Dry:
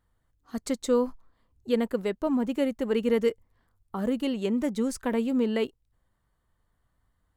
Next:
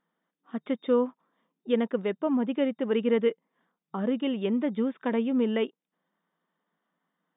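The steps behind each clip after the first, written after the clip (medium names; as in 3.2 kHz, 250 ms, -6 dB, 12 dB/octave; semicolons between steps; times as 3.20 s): FFT band-pass 160–3700 Hz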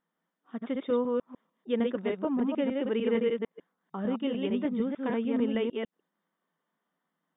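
chunks repeated in reverse 150 ms, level -2.5 dB; trim -4 dB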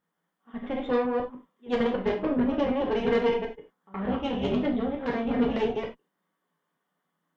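reverse echo 71 ms -20.5 dB; Chebyshev shaper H 6 -16 dB, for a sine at -15 dBFS; gated-style reverb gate 120 ms falling, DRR 0 dB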